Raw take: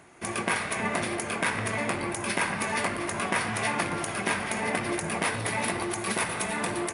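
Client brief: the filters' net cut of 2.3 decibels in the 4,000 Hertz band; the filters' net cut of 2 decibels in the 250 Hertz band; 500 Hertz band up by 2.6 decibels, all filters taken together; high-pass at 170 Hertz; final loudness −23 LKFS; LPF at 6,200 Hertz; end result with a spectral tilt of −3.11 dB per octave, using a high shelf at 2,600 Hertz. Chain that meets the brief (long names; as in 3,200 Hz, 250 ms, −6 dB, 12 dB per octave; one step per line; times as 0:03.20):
high-pass filter 170 Hz
low-pass filter 6,200 Hz
parametric band 250 Hz −3.5 dB
parametric band 500 Hz +4.5 dB
high-shelf EQ 2,600 Hz +5 dB
parametric band 4,000 Hz −7 dB
level +5.5 dB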